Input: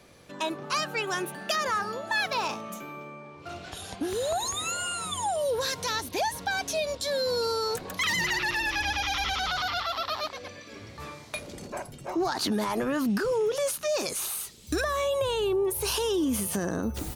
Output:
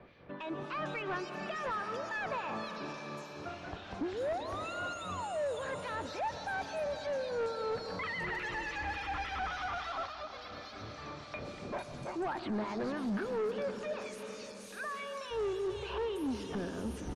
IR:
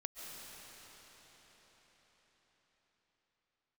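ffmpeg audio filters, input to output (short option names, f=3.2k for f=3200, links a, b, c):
-filter_complex "[0:a]asplit=3[a][b][c];[a]afade=t=out:st=13.92:d=0.02[d];[b]highpass=1.4k,afade=t=in:st=13.92:d=0.02,afade=t=out:st=15.3:d=0.02[e];[c]afade=t=in:st=15.3:d=0.02[f];[d][e][f]amix=inputs=3:normalize=0,acrossover=split=3400[g][h];[h]adelay=450[i];[g][i]amix=inputs=2:normalize=0,alimiter=limit=-23dB:level=0:latency=1:release=184,acrossover=split=1800[j][k];[j]aeval=exprs='val(0)*(1-0.7/2+0.7/2*cos(2*PI*3.5*n/s))':c=same[l];[k]aeval=exprs='val(0)*(1-0.7/2-0.7/2*cos(2*PI*3.5*n/s))':c=same[m];[l][m]amix=inputs=2:normalize=0,asplit=2[n][o];[1:a]atrim=start_sample=2205[p];[o][p]afir=irnorm=-1:irlink=0,volume=-1.5dB[q];[n][q]amix=inputs=2:normalize=0,asplit=3[r][s][t];[r]afade=t=out:st=10.06:d=0.02[u];[s]acompressor=threshold=-37dB:ratio=4,afade=t=in:st=10.06:d=0.02,afade=t=out:st=11.22:d=0.02[v];[t]afade=t=in:st=11.22:d=0.02[w];[u][v][w]amix=inputs=3:normalize=0,asoftclip=type=tanh:threshold=-28dB,lowpass=6.2k,acrossover=split=2600[x][y];[y]acompressor=threshold=-52dB:ratio=4:attack=1:release=60[z];[x][z]amix=inputs=2:normalize=0,volume=-1.5dB" -ar 44100 -c:a libmp3lame -b:a 56k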